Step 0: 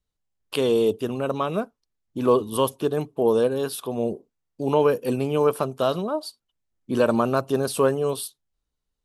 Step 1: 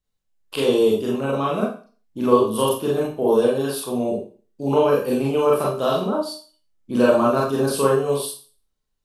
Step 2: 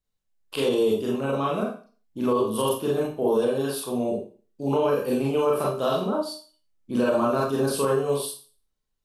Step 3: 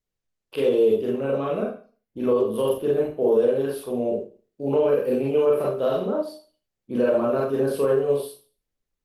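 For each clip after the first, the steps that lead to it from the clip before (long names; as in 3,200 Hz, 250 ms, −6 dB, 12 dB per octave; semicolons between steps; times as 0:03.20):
four-comb reverb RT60 0.39 s, combs from 29 ms, DRR −4.5 dB; level −2.5 dB
brickwall limiter −10.5 dBFS, peak gain reduction 9 dB; level −3 dB
octave-band graphic EQ 500/1,000/2,000/4,000/8,000 Hz +8/−6/+5/−4/−10 dB; level −2.5 dB; Opus 24 kbit/s 48,000 Hz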